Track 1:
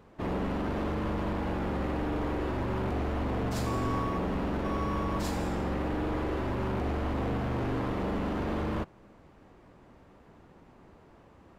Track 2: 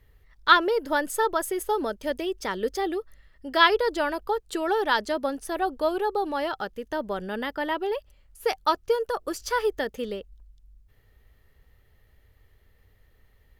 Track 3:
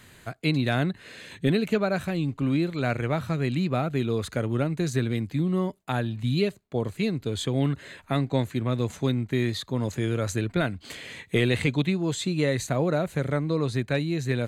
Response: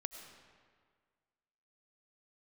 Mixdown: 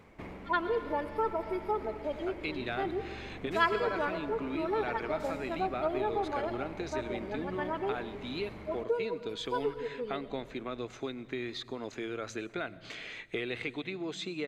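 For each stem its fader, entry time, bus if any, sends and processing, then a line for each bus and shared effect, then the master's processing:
0.0 dB, 0.00 s, no bus, no send, parametric band 2,200 Hz +12.5 dB 0.29 octaves; downward compressor 3 to 1, threshold −38 dBFS, peak gain reduction 8.5 dB; high-shelf EQ 6,300 Hz +8.5 dB; automatic ducking −9 dB, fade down 0.40 s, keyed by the second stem
−1.5 dB, 0.00 s, bus A, send −6 dB, harmonic-percussive split with one part muted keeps harmonic
+1.5 dB, 2.00 s, bus A, send −20 dB, noise gate with hold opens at −42 dBFS
bus A: 0.0 dB, loudspeaker in its box 430–5,600 Hz, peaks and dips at 540 Hz −9 dB, 950 Hz −9 dB, 1,800 Hz −7 dB, 3,100 Hz −5 dB, 4,400 Hz −7 dB; downward compressor 4 to 1, threshold −35 dBFS, peak gain reduction 14 dB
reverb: on, RT60 1.8 s, pre-delay 60 ms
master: high-shelf EQ 11,000 Hz −7.5 dB

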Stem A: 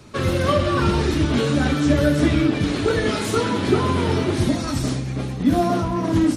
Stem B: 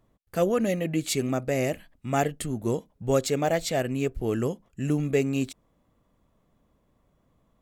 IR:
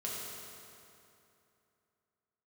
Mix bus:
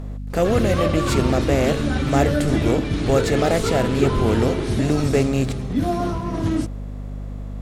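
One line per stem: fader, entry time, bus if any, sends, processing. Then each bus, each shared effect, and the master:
−6.0 dB, 0.30 s, send −9.5 dB, no processing
+2.0 dB, 0.00 s, no send, compressor on every frequency bin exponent 0.6; high-shelf EQ 4,700 Hz −7 dB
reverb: on, RT60 2.8 s, pre-delay 4 ms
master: low-shelf EQ 72 Hz +7 dB; mains hum 50 Hz, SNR 10 dB

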